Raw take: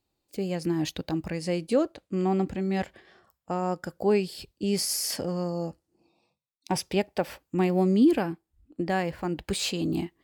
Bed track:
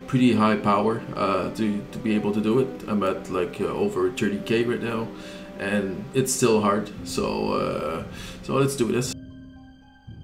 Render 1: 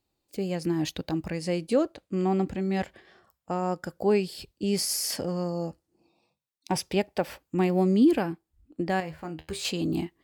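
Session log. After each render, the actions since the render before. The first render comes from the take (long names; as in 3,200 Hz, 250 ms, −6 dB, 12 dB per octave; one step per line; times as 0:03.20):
0:09.00–0:09.65: tuned comb filter 79 Hz, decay 0.2 s, mix 80%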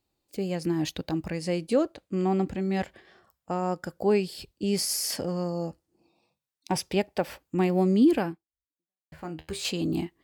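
0:08.28–0:09.12: fade out exponential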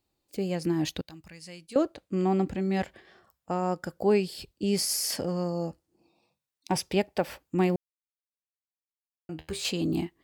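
0:01.01–0:01.76: guitar amp tone stack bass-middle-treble 5-5-5
0:07.76–0:09.29: silence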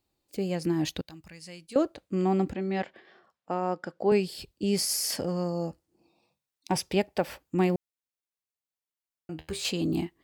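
0:02.53–0:04.12: band-pass filter 210–4,200 Hz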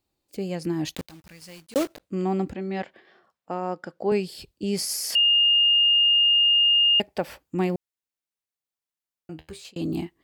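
0:00.95–0:02.01: one scale factor per block 3 bits
0:05.15–0:07.00: beep over 2,830 Hz −15.5 dBFS
0:09.32–0:09.76: fade out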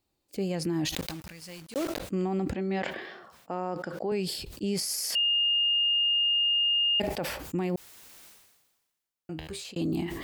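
brickwall limiter −22 dBFS, peak gain reduction 10 dB
level that may fall only so fast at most 46 dB per second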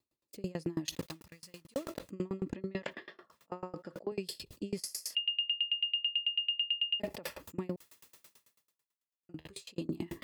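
notch comb filter 760 Hz
tremolo with a ramp in dB decaying 9.1 Hz, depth 29 dB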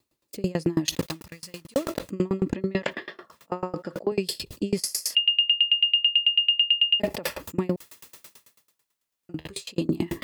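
level +11.5 dB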